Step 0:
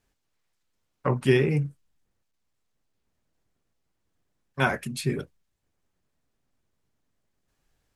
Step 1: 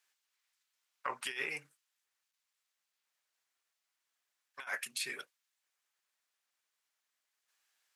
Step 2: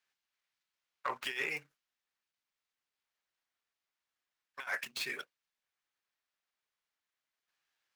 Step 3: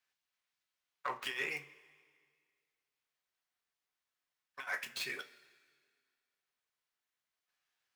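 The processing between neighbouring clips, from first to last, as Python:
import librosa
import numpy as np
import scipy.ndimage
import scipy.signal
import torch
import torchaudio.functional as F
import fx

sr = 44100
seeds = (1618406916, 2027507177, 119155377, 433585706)

y1 = scipy.signal.sosfilt(scipy.signal.butter(2, 1400.0, 'highpass', fs=sr, output='sos'), x)
y1 = fx.over_compress(y1, sr, threshold_db=-35.0, ratio=-0.5)
y1 = y1 * 10.0 ** (-2.0 / 20.0)
y2 = scipy.signal.medfilt(y1, 5)
y2 = fx.leveller(y2, sr, passes=1)
y2 = y2 * 10.0 ** (-1.0 / 20.0)
y3 = fx.rev_double_slope(y2, sr, seeds[0], early_s=0.24, late_s=1.9, knee_db=-18, drr_db=8.0)
y3 = y3 * 10.0 ** (-2.0 / 20.0)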